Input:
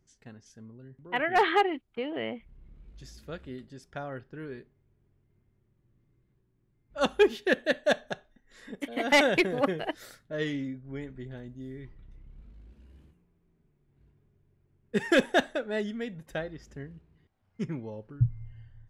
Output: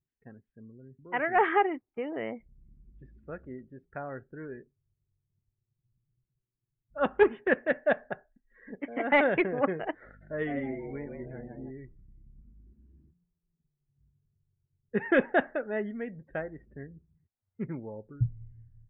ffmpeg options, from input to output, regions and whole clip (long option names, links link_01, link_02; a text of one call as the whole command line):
ffmpeg -i in.wav -filter_complex "[0:a]asettb=1/sr,asplit=3[link_01][link_02][link_03];[link_01]atrim=end=7.144[link_04];[link_02]atrim=start=7.14:end=7.87,asetpts=PTS-STARTPTS,afade=type=in:duration=0.004:curve=qsin,afade=type=out:start_time=0.726:duration=0.004:curve=qsin,lowpass=4000,acrusher=bits=2:mode=log:mix=0:aa=0.000001[link_05];[link_03]atrim=start=7.866[link_06];[link_04][link_05]acrossfade=duration=0.004:curve1=hsin:curve2=qsin[link_07];[link_07][link_06]acrossfade=duration=0.004:curve1=qsin:curve2=hsin,asettb=1/sr,asplit=3[link_08][link_09][link_10];[link_08]atrim=end=10.054[link_11];[link_09]atrim=start=10.05:end=11.71,asetpts=PTS-STARTPTS,afade=type=in:duration=0.004:curve=qsin,afade=type=out:start_time=1.656:duration=0.004:curve=qsin,aeval=exprs='val(0)+0.00282*(sin(2*PI*50*n/s)+sin(2*PI*2*50*n/s)/2+sin(2*PI*3*50*n/s)/3+sin(2*PI*4*50*n/s)/4+sin(2*PI*5*50*n/s)/5)':channel_layout=same,asplit=6[link_12][link_13][link_14][link_15][link_16][link_17];[link_13]adelay=160,afreqshift=100,volume=-5.5dB[link_18];[link_14]adelay=320,afreqshift=200,volume=-13.5dB[link_19];[link_15]adelay=480,afreqshift=300,volume=-21.4dB[link_20];[link_16]adelay=640,afreqshift=400,volume=-29.4dB[link_21];[link_17]adelay=800,afreqshift=500,volume=-37.3dB[link_22];[link_12][link_18][link_19][link_20][link_21][link_22]amix=inputs=6:normalize=0,atrim=end_sample=73206[link_23];[link_10]atrim=start=11.706[link_24];[link_11][link_23]acrossfade=duration=0.004:curve1=hsin:curve2=qsin[link_25];[link_25][link_24]acrossfade=duration=0.004:curve1=qsin:curve2=hsin,lowpass=frequency=2200:width=0.5412,lowpass=frequency=2200:width=1.3066,afftdn=noise_reduction=21:noise_floor=-53,lowshelf=frequency=160:gain=-5" out.wav